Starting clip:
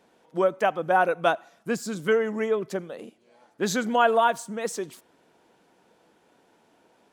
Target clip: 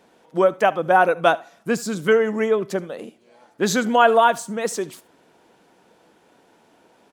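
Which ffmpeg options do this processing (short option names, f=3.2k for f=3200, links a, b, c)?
-af "aecho=1:1:73:0.0841,volume=5.5dB"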